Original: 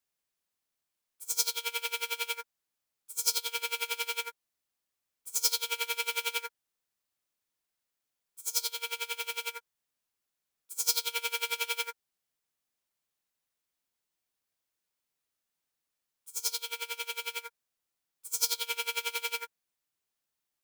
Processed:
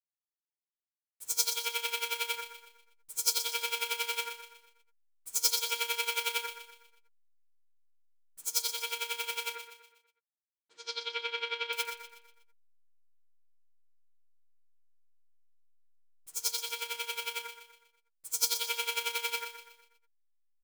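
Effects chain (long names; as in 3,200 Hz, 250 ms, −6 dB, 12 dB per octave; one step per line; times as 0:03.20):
slack as between gear wheels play −52 dBFS
0:09.55–0:11.73: loudspeaker in its box 260–3,800 Hz, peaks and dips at 360 Hz +10 dB, 890 Hz −5 dB, 2,600 Hz −3 dB
repeating echo 122 ms, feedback 44%, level −10 dB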